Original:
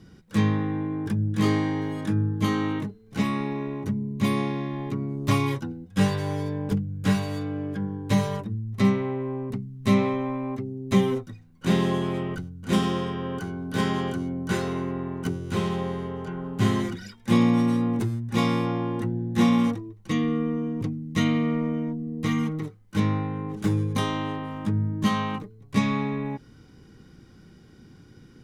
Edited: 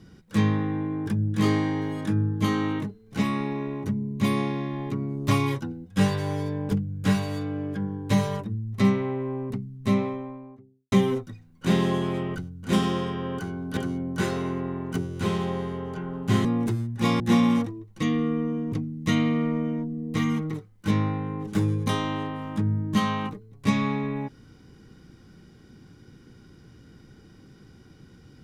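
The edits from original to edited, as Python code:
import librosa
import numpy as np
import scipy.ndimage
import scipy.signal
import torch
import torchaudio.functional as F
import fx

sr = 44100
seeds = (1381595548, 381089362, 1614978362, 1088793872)

y = fx.studio_fade_out(x, sr, start_s=9.45, length_s=1.47)
y = fx.edit(y, sr, fx.cut(start_s=13.77, length_s=0.31),
    fx.cut(start_s=16.76, length_s=1.02),
    fx.cut(start_s=18.53, length_s=0.76), tone=tone)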